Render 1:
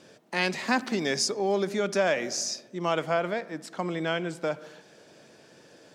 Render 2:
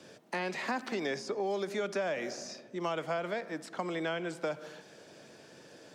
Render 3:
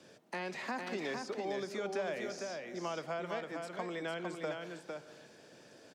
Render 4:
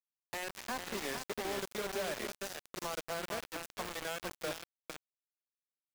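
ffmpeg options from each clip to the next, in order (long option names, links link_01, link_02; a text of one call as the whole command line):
ffmpeg -i in.wav -filter_complex "[0:a]acrossover=split=140|1300[link_01][link_02][link_03];[link_03]alimiter=level_in=0.5dB:limit=-24dB:level=0:latency=1:release=17,volume=-0.5dB[link_04];[link_01][link_02][link_04]amix=inputs=3:normalize=0,acrossover=split=310|3100[link_05][link_06][link_07];[link_05]acompressor=threshold=-46dB:ratio=4[link_08];[link_06]acompressor=threshold=-32dB:ratio=4[link_09];[link_07]acompressor=threshold=-50dB:ratio=4[link_10];[link_08][link_09][link_10]amix=inputs=3:normalize=0" out.wav
ffmpeg -i in.wav -af "aecho=1:1:455:0.596,volume=-5dB" out.wav
ffmpeg -i in.wav -af "acrusher=bits=5:mix=0:aa=0.000001,volume=-2dB" out.wav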